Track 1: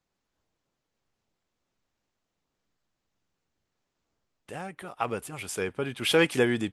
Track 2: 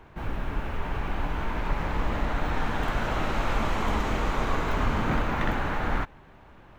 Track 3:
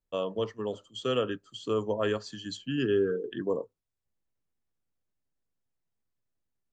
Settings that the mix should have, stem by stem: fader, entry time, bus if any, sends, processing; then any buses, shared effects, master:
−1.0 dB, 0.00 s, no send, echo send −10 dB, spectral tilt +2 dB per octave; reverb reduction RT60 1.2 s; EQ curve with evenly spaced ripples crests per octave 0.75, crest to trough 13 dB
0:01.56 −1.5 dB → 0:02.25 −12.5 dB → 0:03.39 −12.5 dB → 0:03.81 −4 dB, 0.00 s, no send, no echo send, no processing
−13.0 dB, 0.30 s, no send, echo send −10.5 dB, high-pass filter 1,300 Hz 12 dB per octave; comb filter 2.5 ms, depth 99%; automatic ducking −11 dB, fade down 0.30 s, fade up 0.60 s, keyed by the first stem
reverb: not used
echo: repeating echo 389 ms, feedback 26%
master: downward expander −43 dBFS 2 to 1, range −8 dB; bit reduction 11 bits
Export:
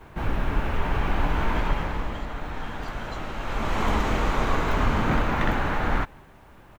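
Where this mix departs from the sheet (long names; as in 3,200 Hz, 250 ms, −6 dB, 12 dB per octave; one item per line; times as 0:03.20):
stem 1: muted
stem 2 −1.5 dB → +5.5 dB
stem 3: entry 0.30 s → 0.60 s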